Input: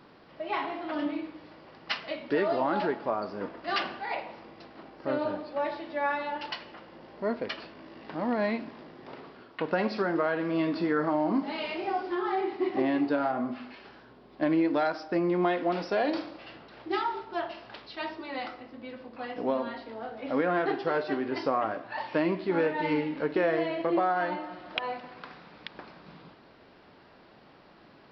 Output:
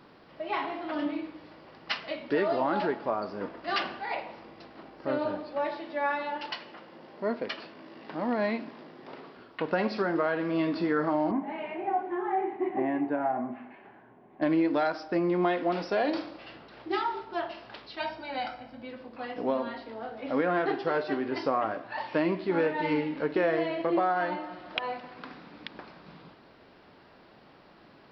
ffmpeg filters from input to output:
ffmpeg -i in.wav -filter_complex "[0:a]asettb=1/sr,asplit=3[link_01][link_02][link_03];[link_01]atrim=end=5.654[link_04];[link_02]atrim=start=5.65:end=9.37,asetpts=PTS-STARTPTS,afade=type=in:duration=0.004:curve=qsin,afade=type=out:start_time=3.716:duration=0.004:curve=qsin,highpass=140[link_05];[link_03]atrim=start=9.366[link_06];[link_04][link_05]acrossfade=duration=0.004:curve1=hsin:curve2=qsin[link_07];[link_07][link_06]acrossfade=duration=0.004:curve1=qsin:curve2=hsin,asettb=1/sr,asplit=3[link_08][link_09][link_10];[link_08]atrim=end=11.314[link_11];[link_09]atrim=start=11.31:end=14.42,asetpts=PTS-STARTPTS,afade=type=in:duration=0.004:curve=qsin,afade=type=out:start_time=3.106:duration=0.004:curve=qsin,highpass=120,equalizer=frequency=260:width_type=q:width=4:gain=-3,equalizer=frequency=500:width_type=q:width=4:gain=-7,equalizer=frequency=750:width_type=q:width=4:gain=4,equalizer=frequency=1300:width_type=q:width=4:gain=-9,lowpass=frequency=2100:width=0.5412,lowpass=frequency=2100:width=1.3066[link_12];[link_10]atrim=start=14.416[link_13];[link_11][link_12]acrossfade=duration=0.004:curve1=hsin:curve2=qsin[link_14];[link_14][link_13]acrossfade=duration=0.004:curve1=qsin:curve2=hsin,asettb=1/sr,asplit=3[link_15][link_16][link_17];[link_15]atrim=end=18.004[link_18];[link_16]atrim=start=18:end=18.83,asetpts=PTS-STARTPTS,afade=type=in:duration=0.004:curve=qsin,afade=type=out:start_time=0.826:duration=0.004:curve=qsin,aecho=1:1:1.3:0.74,atrim=end_sample=36603[link_19];[link_17]atrim=start=18.826[link_20];[link_18][link_19]acrossfade=duration=0.004:curve1=hsin:curve2=qsin[link_21];[link_21][link_20]acrossfade=duration=0.004:curve1=qsin:curve2=hsin,asettb=1/sr,asplit=3[link_22][link_23][link_24];[link_22]atrim=end=25.184[link_25];[link_23]atrim=start=25.18:end=25.78,asetpts=PTS-STARTPTS,afade=type=in:duration=0.004:curve=qsin,afade=type=out:start_time=0.596:duration=0.004:curve=qsin,equalizer=frequency=270:width_type=o:width=0.64:gain=9[link_26];[link_24]atrim=start=25.776[link_27];[link_25][link_26]acrossfade=duration=0.004:curve1=hsin:curve2=qsin[link_28];[link_28][link_27]acrossfade=duration=0.004:curve1=qsin:curve2=hsin" out.wav

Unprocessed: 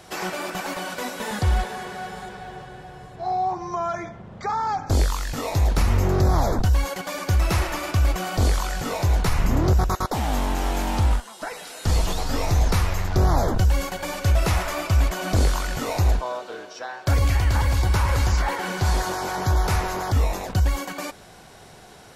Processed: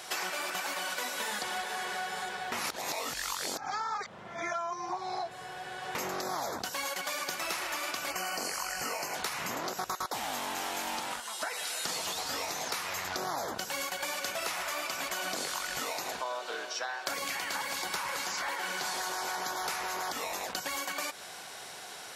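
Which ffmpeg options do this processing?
ffmpeg -i in.wav -filter_complex "[0:a]asettb=1/sr,asplit=3[link_01][link_02][link_03];[link_01]atrim=end=8.104[link_04];[link_02]atrim=start=8.1:end=9.15,asetpts=PTS-STARTPTS,afade=type=in:duration=0.004:curve=qsin,afade=type=out:start_time=1.046:duration=0.004:curve=qsin,asuperstop=centerf=3600:order=8:qfactor=3.3[link_05];[link_03]atrim=start=9.146[link_06];[link_04][link_05]acrossfade=duration=0.004:curve1=hsin:curve2=qsin[link_07];[link_07][link_06]acrossfade=duration=0.004:curve1=qsin:curve2=hsin,asplit=3[link_08][link_09][link_10];[link_08]atrim=end=2.522[link_11];[link_09]atrim=start=2.518:end=5.952,asetpts=PTS-STARTPTS,areverse[link_12];[link_10]atrim=start=5.948[link_13];[link_11][link_12]acrossfade=duration=0.004:curve1=hsin:curve2=hsin[link_14];[link_14][link_13]acrossfade=duration=0.004:curve1=hsin:curve2=hsin,afftfilt=real='re*lt(hypot(re,im),0.631)':imag='im*lt(hypot(re,im),0.631)':win_size=1024:overlap=0.75,highpass=frequency=1400:poles=1,acompressor=threshold=-38dB:ratio=10,volume=6.5dB" out.wav

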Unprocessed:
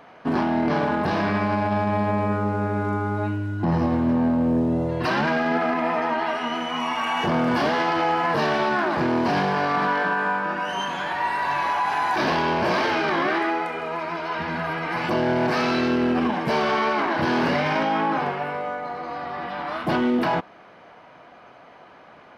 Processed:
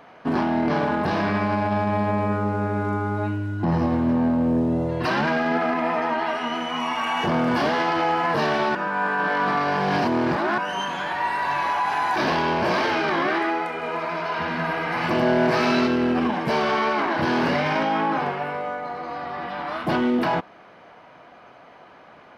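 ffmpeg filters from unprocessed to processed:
ffmpeg -i in.wav -filter_complex "[0:a]asettb=1/sr,asplit=3[link_01][link_02][link_03];[link_01]atrim=end=13.734[link_04];[link_02]atrim=start=13.73:end=15.87,asetpts=PTS-STARTPTS,afade=type=in:duration=0.004:curve=qsin,afade=type=out:start_time=2.136:duration=0.004:curve=qsin,aecho=1:1:102:0.668,atrim=end_sample=94374[link_05];[link_03]atrim=start=15.866[link_06];[link_04][link_05]acrossfade=duration=0.004:curve1=hsin:curve2=qsin[link_07];[link_07][link_06]acrossfade=duration=0.004:curve1=qsin:curve2=hsin,asplit=3[link_08][link_09][link_10];[link_08]atrim=end=8.752[link_11];[link_09]atrim=start=8.748:end=10.582,asetpts=PTS-STARTPTS,areverse[link_12];[link_10]atrim=start=10.578[link_13];[link_11][link_12]acrossfade=duration=0.004:curve1=hsin:curve2=hsin[link_14];[link_14][link_13]acrossfade=duration=0.004:curve1=hsin:curve2=hsin" out.wav

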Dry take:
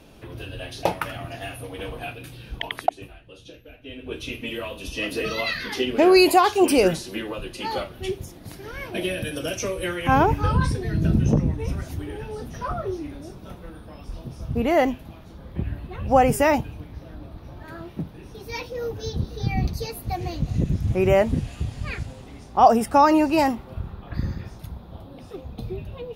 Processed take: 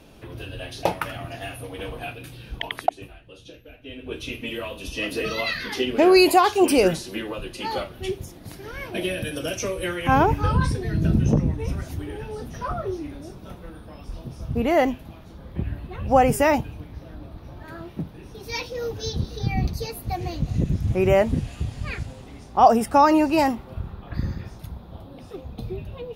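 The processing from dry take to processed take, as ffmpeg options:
ffmpeg -i in.wav -filter_complex "[0:a]asettb=1/sr,asplit=3[link_01][link_02][link_03];[link_01]atrim=end=18.434[link_04];[link_02]atrim=start=18.43:end=19.39,asetpts=PTS-STARTPTS,afade=type=in:duration=0.004:curve=qsin,afade=type=out:start_time=0.956:duration=0.004:curve=qsin,equalizer=frequency=5100:width_type=o:width=2:gain=6[link_05];[link_03]atrim=start=19.386[link_06];[link_04][link_05]acrossfade=duration=0.004:curve1=hsin:curve2=qsin[link_07];[link_07][link_06]acrossfade=duration=0.004:curve1=qsin:curve2=hsin" out.wav

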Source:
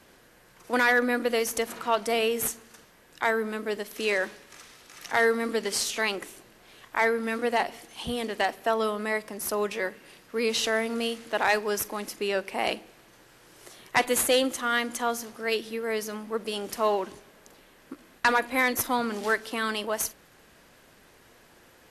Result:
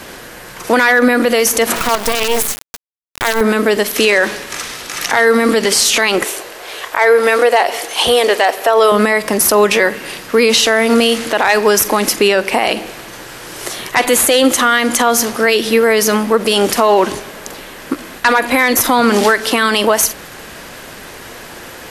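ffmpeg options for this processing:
ffmpeg -i in.wav -filter_complex "[0:a]asettb=1/sr,asplit=3[link_01][link_02][link_03];[link_01]atrim=end=1.764[link_04];[link_02]atrim=start=1.76:end=3.41,asetpts=PTS-STARTPTS,afade=type=in:duration=0.004:curve=qsin,afade=type=out:start_time=1.646:duration=0.004:curve=qsin,acrusher=bits=4:dc=4:mix=0:aa=0.000001[link_05];[link_03]atrim=start=3.406[link_06];[link_04][link_05]acrossfade=duration=0.004:curve1=hsin:curve2=qsin[link_07];[link_07][link_06]acrossfade=duration=0.004:curve1=qsin:curve2=hsin,asettb=1/sr,asplit=3[link_08][link_09][link_10];[link_08]atrim=end=6.244[link_11];[link_09]atrim=start=6.24:end=8.92,asetpts=PTS-STARTPTS,afade=type=in:duration=0.004:curve=qsin,afade=type=out:start_time=2.676:duration=0.004:curve=qsin,lowshelf=frequency=310:width_type=q:width=1.5:gain=-12.5[link_12];[link_10]atrim=start=8.916[link_13];[link_11][link_12]acrossfade=duration=0.004:curve1=hsin:curve2=qsin[link_14];[link_14][link_13]acrossfade=duration=0.004:curve1=qsin:curve2=hsin,lowshelf=frequency=430:gain=-3,acompressor=threshold=-29dB:ratio=2,alimiter=level_in=25.5dB:limit=-1dB:release=50:level=0:latency=1,volume=-1dB" out.wav

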